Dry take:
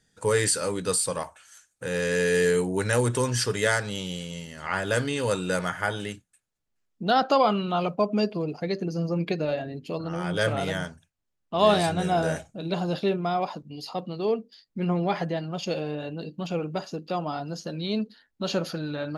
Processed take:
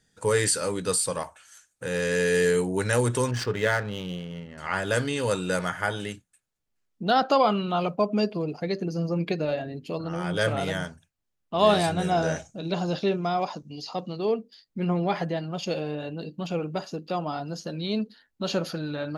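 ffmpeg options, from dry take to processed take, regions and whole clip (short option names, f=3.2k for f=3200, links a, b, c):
-filter_complex "[0:a]asettb=1/sr,asplit=3[a][b][c];[a]atrim=end=3.314[d];[b]atrim=start=3.31:end=4.58,asetpts=PTS-STARTPTS,afade=t=in:d=0.004:c=qsin,afade=t=out:st=1.266:d=0.004:c=qsin,asplit=2[e][f];[f]adelay=28,volume=-14dB[g];[e][g]amix=inputs=2:normalize=0,atrim=end_sample=56007,adynamicsmooth=sensitivity=7.5:basefreq=1.1k,highshelf=f=4.7k:g=-10[h];[c]atrim=start=4.576[i];[d][h]acrossfade=d=0.004:c1=hsin:c2=qsin[j];[j][i]acrossfade=d=0.004:c1=qsin:c2=hsin,asettb=1/sr,asplit=3[k][l][m];[k]atrim=end=12.104[n];[l]atrim=start=12.1:end=14.17,asetpts=PTS-STARTPTS,afade=t=in:d=0.004:c=qsin,afade=t=out:st=2.066:d=0.004:c=qsin,acrossover=split=4400[o][p];[p]acompressor=threshold=-59dB:ratio=4:attack=1:release=60[q];[o][q]amix=inputs=2:normalize=0,equalizer=f=6.1k:t=o:w=0.66:g=14[r];[m]atrim=start=14.166[s];[n][r]acrossfade=d=0.004:c1=hsin:c2=qsin[t];[t][s]acrossfade=d=0.004:c1=qsin:c2=hsin"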